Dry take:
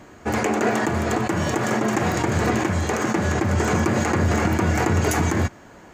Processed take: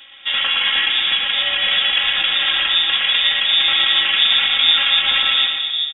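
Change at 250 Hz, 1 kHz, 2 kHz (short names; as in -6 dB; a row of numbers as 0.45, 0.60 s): under -20 dB, -4.0 dB, +8.5 dB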